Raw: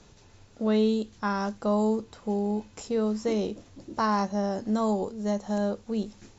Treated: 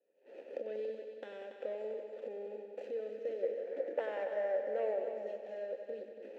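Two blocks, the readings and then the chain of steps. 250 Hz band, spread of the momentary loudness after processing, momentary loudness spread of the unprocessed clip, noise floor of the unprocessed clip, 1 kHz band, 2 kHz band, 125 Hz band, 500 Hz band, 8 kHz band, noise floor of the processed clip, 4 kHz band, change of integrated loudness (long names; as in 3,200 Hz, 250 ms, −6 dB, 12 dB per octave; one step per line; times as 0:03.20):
−28.5 dB, 11 LU, 7 LU, −56 dBFS, −18.0 dB, −10.5 dB, below −30 dB, −6.5 dB, can't be measured, −56 dBFS, below −15 dB, −11.5 dB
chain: running median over 25 samples
camcorder AGC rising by 66 dB per second
gain on a spectral selection 0:03.43–0:04.99, 410–2,400 Hz +10 dB
noise gate −38 dBFS, range −12 dB
high-pass filter 270 Hz 24 dB per octave
in parallel at −2 dB: downward compressor, threshold −32 dBFS, peak gain reduction 16.5 dB
on the sum: formant filter e
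on a send: echo machine with several playback heads 94 ms, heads all three, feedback 49%, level −11.5 dB
on the sum: level −5 dB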